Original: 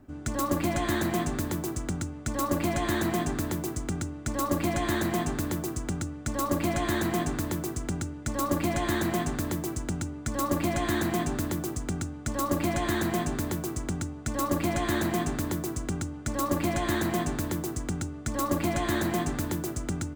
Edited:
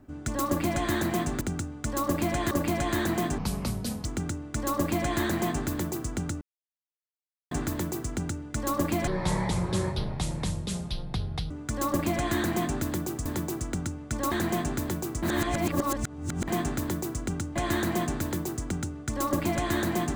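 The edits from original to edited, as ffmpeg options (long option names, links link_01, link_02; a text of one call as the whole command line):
ffmpeg -i in.wav -filter_complex "[0:a]asplit=14[link_01][link_02][link_03][link_04][link_05][link_06][link_07][link_08][link_09][link_10][link_11][link_12][link_13][link_14];[link_01]atrim=end=1.412[link_15];[link_02]atrim=start=11.828:end=12.932[link_16];[link_03]atrim=start=2.468:end=3.344[link_17];[link_04]atrim=start=3.34:end=3.77,asetpts=PTS-STARTPTS,asetrate=28224,aresample=44100[link_18];[link_05]atrim=start=3.766:end=6.13,asetpts=PTS-STARTPTS,afade=type=out:start_time=2.36:duration=0.004:curve=hsin[link_19];[link_06]atrim=start=6.13:end=7.23,asetpts=PTS-STARTPTS,volume=0[link_20];[link_07]atrim=start=7.23:end=8.794,asetpts=PTS-STARTPTS,afade=type=in:duration=0.004:curve=hsin[link_21];[link_08]atrim=start=8.79:end=10.08,asetpts=PTS-STARTPTS,asetrate=23373,aresample=44100[link_22];[link_09]atrim=start=10.076:end=11.832[link_23];[link_10]atrim=start=1.408:end=2.472[link_24];[link_11]atrim=start=12.928:end=13.842[link_25];[link_12]atrim=start=13.838:end=15.092,asetpts=PTS-STARTPTS,areverse[link_26];[link_13]atrim=start=15.088:end=16.172[link_27];[link_14]atrim=start=16.738[link_28];[link_15][link_16]acrossfade=duration=0.004:curve1=hsin:curve2=hsin[link_29];[link_29][link_17]acrossfade=duration=0.004:curve1=hsin:curve2=hsin[link_30];[link_30][link_18]acrossfade=duration=0.004:curve1=hsin:curve2=hsin[link_31];[link_19][link_20][link_21]concat=n=3:v=0:a=1[link_32];[link_31][link_32]acrossfade=duration=0.004:curve1=hsin:curve2=hsin[link_33];[link_33][link_22]acrossfade=duration=0.004:curve1=hsin:curve2=hsin[link_34];[link_34][link_23]acrossfade=duration=0.004:curve1=hsin:curve2=hsin[link_35];[link_35][link_24]acrossfade=duration=0.004:curve1=hsin:curve2=hsin[link_36];[link_36][link_25]acrossfade=duration=0.004:curve1=hsin:curve2=hsin[link_37];[link_37][link_26]acrossfade=duration=0.004:curve1=hsin:curve2=hsin[link_38];[link_38][link_27]acrossfade=duration=0.004:curve1=hsin:curve2=hsin[link_39];[link_39][link_28]acrossfade=duration=0.004:curve1=hsin:curve2=hsin" out.wav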